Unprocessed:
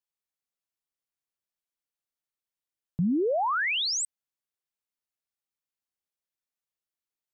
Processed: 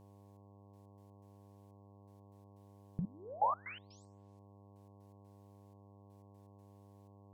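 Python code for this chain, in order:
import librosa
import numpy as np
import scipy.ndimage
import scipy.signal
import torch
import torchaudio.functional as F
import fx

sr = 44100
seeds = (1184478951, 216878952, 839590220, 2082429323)

y = fx.env_lowpass_down(x, sr, base_hz=390.0, full_db=-26.5)
y = fx.over_compress(y, sr, threshold_db=-32.0, ratio=-0.5)
y = fx.rev_gated(y, sr, seeds[0], gate_ms=220, shape='falling', drr_db=10.5)
y = fx.step_gate(y, sr, bpm=123, pattern='xxx...x.x.x', floor_db=-24.0, edge_ms=4.5)
y = fx.dmg_buzz(y, sr, base_hz=100.0, harmonics=11, level_db=-65.0, tilt_db=-5, odd_only=False)
y = F.gain(torch.from_numpy(y), 5.5).numpy()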